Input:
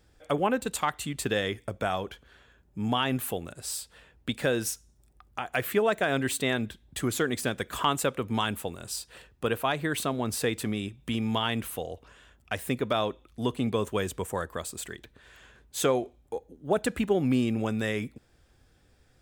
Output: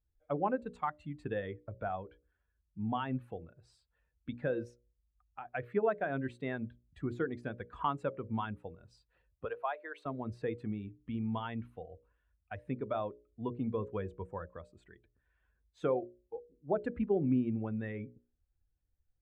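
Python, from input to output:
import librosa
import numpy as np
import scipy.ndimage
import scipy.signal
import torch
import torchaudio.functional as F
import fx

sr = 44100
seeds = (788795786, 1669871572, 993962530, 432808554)

y = fx.highpass(x, sr, hz=440.0, slope=24, at=(9.45, 10.06))
y = fx.bin_expand(y, sr, power=1.5)
y = scipy.signal.sosfilt(scipy.signal.butter(2, 1300.0, 'lowpass', fs=sr, output='sos'), y)
y = fx.hum_notches(y, sr, base_hz=60, count=10)
y = y * librosa.db_to_amplitude(-3.0)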